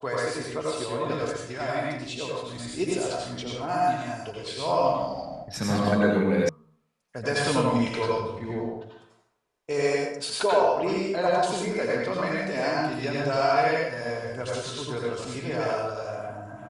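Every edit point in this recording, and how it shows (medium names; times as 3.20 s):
6.49 s: sound stops dead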